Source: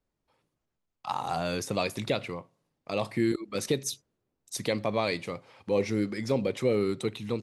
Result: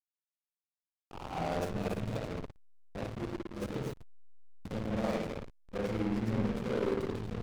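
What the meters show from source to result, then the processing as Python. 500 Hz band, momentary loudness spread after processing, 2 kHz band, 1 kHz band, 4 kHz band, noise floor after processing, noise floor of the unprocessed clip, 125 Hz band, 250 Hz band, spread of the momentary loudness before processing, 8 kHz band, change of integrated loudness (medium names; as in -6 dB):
-7.0 dB, 13 LU, -8.0 dB, -6.5 dB, -12.0 dB, under -85 dBFS, -83 dBFS, -2.0 dB, -4.0 dB, 13 LU, -16.5 dB, -5.5 dB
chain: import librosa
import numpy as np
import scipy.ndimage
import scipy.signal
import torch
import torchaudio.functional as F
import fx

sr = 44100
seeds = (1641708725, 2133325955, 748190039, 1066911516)

y = 10.0 ** (-32.0 / 20.0) * np.tanh(x / 10.0 ** (-32.0 / 20.0))
y = fx.rev_spring(y, sr, rt60_s=1.3, pass_ms=(54,), chirp_ms=50, drr_db=-4.0)
y = fx.backlash(y, sr, play_db=-24.0)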